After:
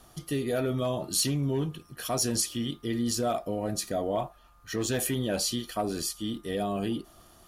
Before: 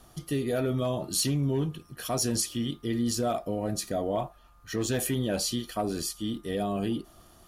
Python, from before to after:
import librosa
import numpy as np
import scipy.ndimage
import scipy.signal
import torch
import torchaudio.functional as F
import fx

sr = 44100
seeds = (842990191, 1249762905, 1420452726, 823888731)

y = fx.low_shelf(x, sr, hz=370.0, db=-3.0)
y = F.gain(torch.from_numpy(y), 1.0).numpy()